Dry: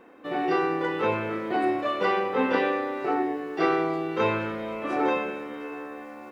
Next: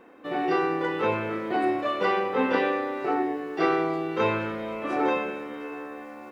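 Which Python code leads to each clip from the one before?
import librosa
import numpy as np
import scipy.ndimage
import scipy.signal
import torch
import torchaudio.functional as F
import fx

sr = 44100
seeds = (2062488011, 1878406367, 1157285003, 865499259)

y = x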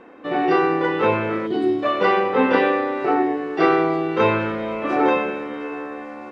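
y = fx.spec_box(x, sr, start_s=1.47, length_s=0.36, low_hz=460.0, high_hz=2900.0, gain_db=-13)
y = fx.air_absorb(y, sr, metres=80.0)
y = F.gain(torch.from_numpy(y), 7.0).numpy()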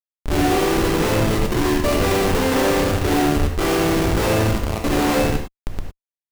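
y = fx.schmitt(x, sr, flips_db=-20.0)
y = fx.rev_gated(y, sr, seeds[0], gate_ms=130, shape='flat', drr_db=1.5)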